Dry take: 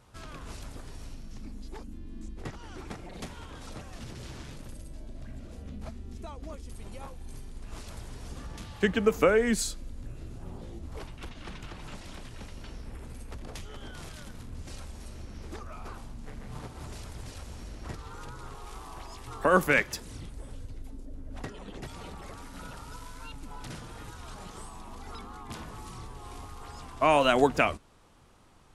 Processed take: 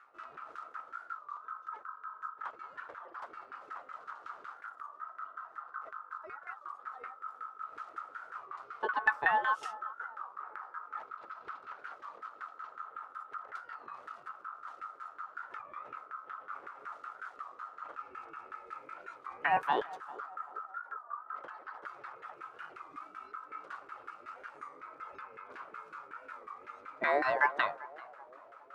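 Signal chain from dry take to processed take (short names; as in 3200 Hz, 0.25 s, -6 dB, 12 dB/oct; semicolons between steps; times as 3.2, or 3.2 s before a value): notch 1100 Hz, Q 16; reverse; upward compressor, threshold -43 dBFS; reverse; ring modulator 1300 Hz; LFO band-pass saw down 5.4 Hz 370–1600 Hz; on a send: narrowing echo 0.392 s, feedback 54%, band-pass 580 Hz, level -16.5 dB; on the sum: record warp 33 1/3 rpm, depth 160 cents; gain +3.5 dB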